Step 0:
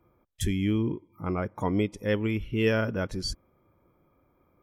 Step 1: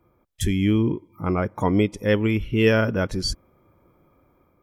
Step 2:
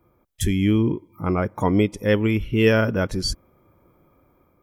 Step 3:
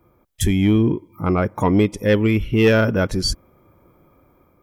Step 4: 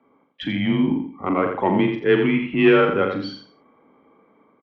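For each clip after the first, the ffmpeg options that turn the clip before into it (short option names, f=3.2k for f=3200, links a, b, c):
-af "dynaudnorm=f=310:g=3:m=4dB,volume=2.5dB"
-af "highshelf=f=3.5k:g=-11,crystalizer=i=2.5:c=0,volume=1dB"
-af "asoftclip=type=tanh:threshold=-10dB,volume=4dB"
-filter_complex "[0:a]asplit=2[a][b];[b]adelay=42,volume=-7dB[c];[a][c]amix=inputs=2:normalize=0,aecho=1:1:85|170|255:0.473|0.114|0.0273,highpass=f=300:t=q:w=0.5412,highpass=f=300:t=q:w=1.307,lowpass=f=3.5k:t=q:w=0.5176,lowpass=f=3.5k:t=q:w=0.7071,lowpass=f=3.5k:t=q:w=1.932,afreqshift=-82"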